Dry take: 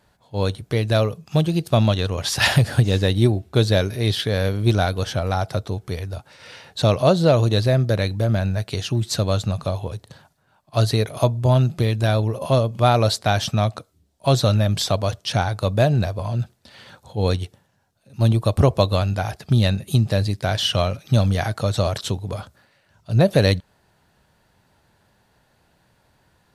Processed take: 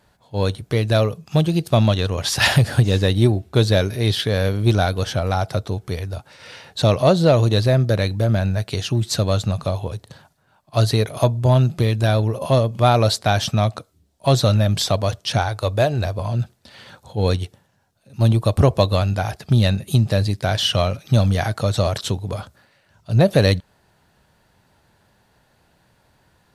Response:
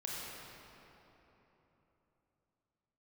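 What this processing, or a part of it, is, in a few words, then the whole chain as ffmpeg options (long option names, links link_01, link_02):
parallel distortion: -filter_complex "[0:a]asettb=1/sr,asplit=3[link_01][link_02][link_03];[link_01]atrim=end=15.384[link_04];[link_02]atrim=start=15.38:end=16.05,asetpts=PTS-STARTPTS,afade=type=in:duration=0.004:curve=qsin,afade=type=out:start_time=0.666:duration=0.004:curve=qsin,equalizer=frequency=180:width=2.1:gain=-14[link_05];[link_03]atrim=start=16.046[link_06];[link_04][link_05]acrossfade=duration=0.004:curve1=hsin:curve2=qsin[link_07];[link_07][link_06]acrossfade=duration=0.004:curve1=qsin:curve2=hsin,asplit=2[link_08][link_09];[link_09]asoftclip=type=hard:threshold=-14.5dB,volume=-13dB[link_10];[link_08][link_10]amix=inputs=2:normalize=0"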